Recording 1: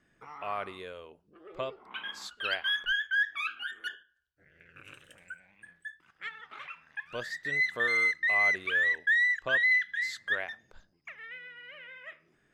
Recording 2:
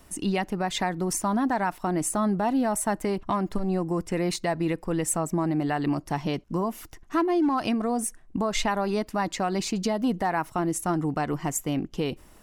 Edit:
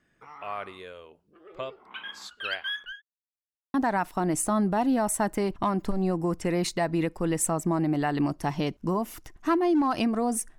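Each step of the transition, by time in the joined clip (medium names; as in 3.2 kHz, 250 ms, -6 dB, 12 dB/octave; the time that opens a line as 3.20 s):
recording 1
2.44–3.02 s: fade out equal-power
3.02–3.74 s: mute
3.74 s: go over to recording 2 from 1.41 s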